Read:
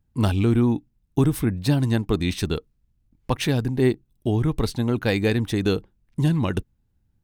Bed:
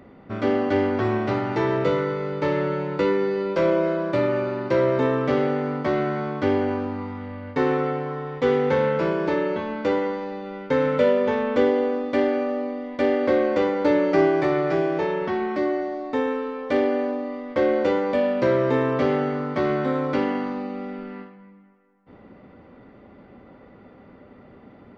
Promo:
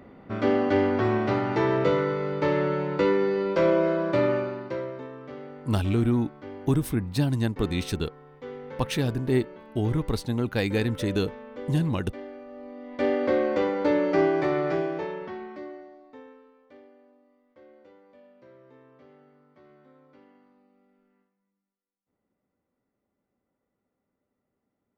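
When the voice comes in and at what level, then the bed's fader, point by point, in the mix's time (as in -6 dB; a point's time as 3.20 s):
5.50 s, -4.0 dB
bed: 4.31 s -1 dB
5.08 s -19 dB
12.46 s -19 dB
13.04 s -3.5 dB
14.70 s -3.5 dB
16.96 s -33 dB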